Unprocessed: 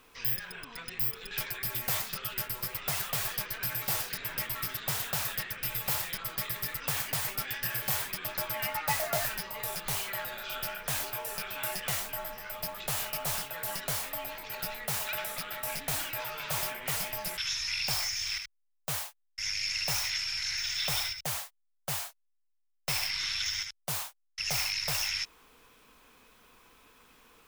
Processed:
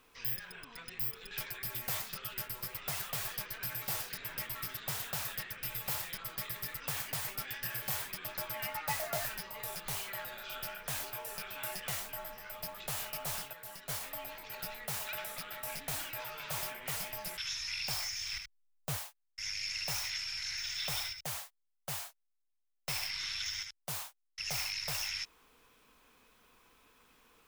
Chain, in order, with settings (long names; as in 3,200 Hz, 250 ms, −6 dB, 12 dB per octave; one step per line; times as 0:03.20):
0:13.53–0:14.01: noise gate −33 dBFS, range −7 dB
0:18.33–0:18.97: low-shelf EQ 420 Hz +8.5 dB
level −5.5 dB